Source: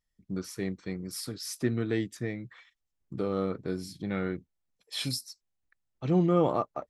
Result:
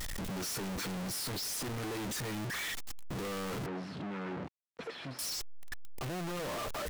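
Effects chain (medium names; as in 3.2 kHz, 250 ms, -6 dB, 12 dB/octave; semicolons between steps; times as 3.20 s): one-bit comparator; 3.66–5.19 s: band-pass 150–2100 Hz; trim -5 dB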